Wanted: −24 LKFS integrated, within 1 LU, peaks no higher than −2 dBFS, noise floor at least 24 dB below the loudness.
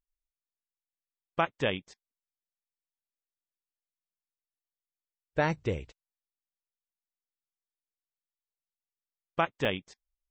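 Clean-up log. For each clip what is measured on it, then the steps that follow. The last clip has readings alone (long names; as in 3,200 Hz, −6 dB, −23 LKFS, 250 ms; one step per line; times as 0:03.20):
number of dropouts 1; longest dropout 1.6 ms; integrated loudness −32.0 LKFS; sample peak −13.0 dBFS; target loudness −24.0 LKFS
→ repair the gap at 0:09.65, 1.6 ms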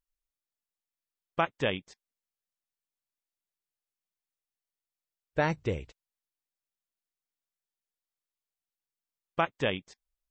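number of dropouts 0; integrated loudness −32.0 LKFS; sample peak −13.0 dBFS; target loudness −24.0 LKFS
→ level +8 dB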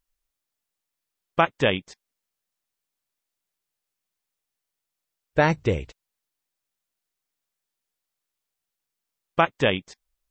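integrated loudness −24.0 LKFS; sample peak −5.0 dBFS; background noise floor −85 dBFS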